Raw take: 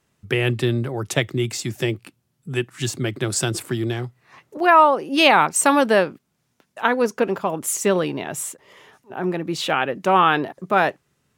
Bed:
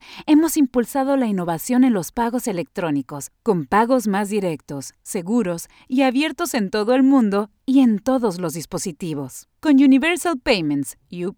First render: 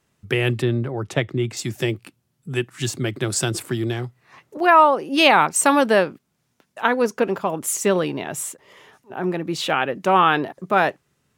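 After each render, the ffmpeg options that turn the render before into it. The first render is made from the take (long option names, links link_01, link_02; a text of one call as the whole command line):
ffmpeg -i in.wav -filter_complex "[0:a]asettb=1/sr,asplit=3[link_01][link_02][link_03];[link_01]atrim=end=0.624[link_04];[link_02]atrim=start=0.62:end=1.57,asetpts=PTS-STARTPTS,afade=type=in:duration=0.004:curve=qsin,afade=type=out:start_time=0.946:duration=0.004:curve=qsin,lowpass=frequency=2200:poles=1[link_05];[link_03]atrim=start=1.566[link_06];[link_04][link_05]acrossfade=duration=0.004:curve1=hsin:curve2=qsin[link_07];[link_07][link_06]acrossfade=duration=0.004:curve1=qsin:curve2=hsin" out.wav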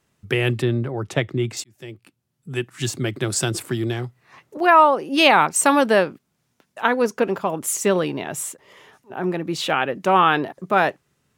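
ffmpeg -i in.wav -filter_complex "[0:a]asplit=2[link_01][link_02];[link_01]atrim=end=1.64,asetpts=PTS-STARTPTS,afade=type=out:start_time=1.636:duration=0.004:curve=hsin[link_03];[link_02]atrim=start=1.64,asetpts=PTS-STARTPTS,afade=type=in:duration=1.2[link_04];[link_03][link_04]concat=n=2:v=0:a=1" out.wav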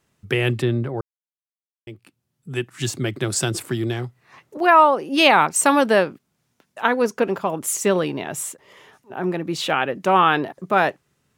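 ffmpeg -i in.wav -filter_complex "[0:a]asplit=3[link_01][link_02][link_03];[link_01]atrim=end=1.01,asetpts=PTS-STARTPTS,afade=type=out:start_time=1.006:duration=0.004:curve=hsin[link_04];[link_02]atrim=start=1.01:end=1.87,asetpts=PTS-STARTPTS,volume=0[link_05];[link_03]atrim=start=1.87,asetpts=PTS-STARTPTS,afade=type=in:duration=0.004:curve=hsin[link_06];[link_04][link_05][link_06]concat=n=3:v=0:a=1" out.wav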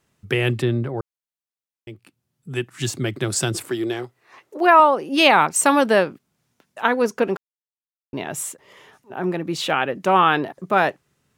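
ffmpeg -i in.wav -filter_complex "[0:a]asettb=1/sr,asplit=3[link_01][link_02][link_03];[link_01]atrim=end=3.704[link_04];[link_02]atrim=start=3.7:end=4.8,asetpts=PTS-STARTPTS,afade=type=in:duration=0.004:curve=qsin,afade=type=out:start_time=1.096:duration=0.004:curve=qsin,lowshelf=frequency=250:width_type=q:width=1.5:gain=-9.5[link_05];[link_03]atrim=start=4.796[link_06];[link_04][link_05]acrossfade=duration=0.004:curve1=hsin:curve2=qsin[link_07];[link_07][link_06]acrossfade=duration=0.004:curve1=qsin:curve2=hsin,asplit=3[link_08][link_09][link_10];[link_08]atrim=end=7.37,asetpts=PTS-STARTPTS,afade=type=out:start_time=7.366:duration=0.004:curve=hsin[link_11];[link_09]atrim=start=7.37:end=8.13,asetpts=PTS-STARTPTS,volume=0[link_12];[link_10]atrim=start=8.13,asetpts=PTS-STARTPTS,afade=type=in:duration=0.004:curve=hsin[link_13];[link_11][link_12][link_13]concat=n=3:v=0:a=1" out.wav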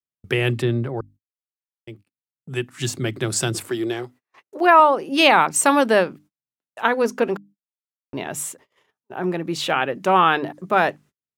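ffmpeg -i in.wav -af "bandreject=frequency=50:width_type=h:width=6,bandreject=frequency=100:width_type=h:width=6,bandreject=frequency=150:width_type=h:width=6,bandreject=frequency=200:width_type=h:width=6,bandreject=frequency=250:width_type=h:width=6,bandreject=frequency=300:width_type=h:width=6,agate=range=-35dB:threshold=-45dB:ratio=16:detection=peak" out.wav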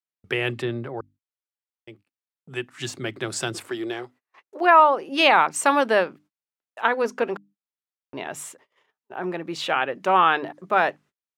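ffmpeg -i in.wav -af "lowpass=frequency=3300:poles=1,lowshelf=frequency=300:gain=-12" out.wav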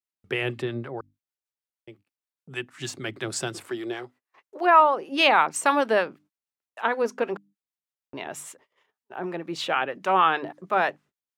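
ffmpeg -i in.wav -filter_complex "[0:a]acrossover=split=780[link_01][link_02];[link_01]aeval=exprs='val(0)*(1-0.5/2+0.5/2*cos(2*PI*6.4*n/s))':channel_layout=same[link_03];[link_02]aeval=exprs='val(0)*(1-0.5/2-0.5/2*cos(2*PI*6.4*n/s))':channel_layout=same[link_04];[link_03][link_04]amix=inputs=2:normalize=0" out.wav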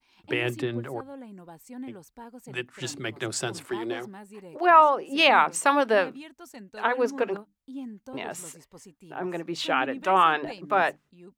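ffmpeg -i in.wav -i bed.wav -filter_complex "[1:a]volume=-23.5dB[link_01];[0:a][link_01]amix=inputs=2:normalize=0" out.wav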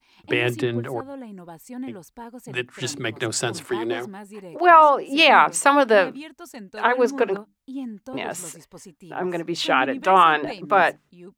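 ffmpeg -i in.wav -af "volume=5.5dB,alimiter=limit=-3dB:level=0:latency=1" out.wav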